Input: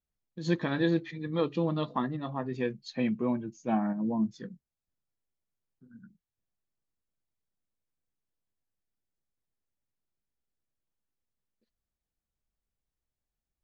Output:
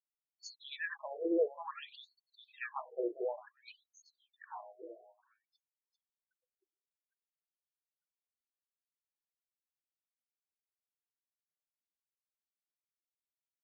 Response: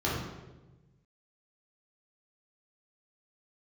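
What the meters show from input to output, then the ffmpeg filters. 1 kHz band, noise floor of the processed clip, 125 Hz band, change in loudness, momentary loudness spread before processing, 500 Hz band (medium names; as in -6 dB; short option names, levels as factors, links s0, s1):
-9.0 dB, under -85 dBFS, under -40 dB, -8.0 dB, 7 LU, -4.5 dB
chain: -af "afftfilt=real='re*gte(hypot(re,im),0.00447)':imag='im*gte(hypot(re,im),0.00447)':win_size=1024:overlap=0.75,aecho=1:1:397|794|1191|1588|1985:0.631|0.24|0.0911|0.0346|0.0132,afftfilt=real='re*between(b*sr/1024,470*pow(6200/470,0.5+0.5*sin(2*PI*0.56*pts/sr))/1.41,470*pow(6200/470,0.5+0.5*sin(2*PI*0.56*pts/sr))*1.41)':imag='im*between(b*sr/1024,470*pow(6200/470,0.5+0.5*sin(2*PI*0.56*pts/sr))/1.41,470*pow(6200/470,0.5+0.5*sin(2*PI*0.56*pts/sr))*1.41)':win_size=1024:overlap=0.75"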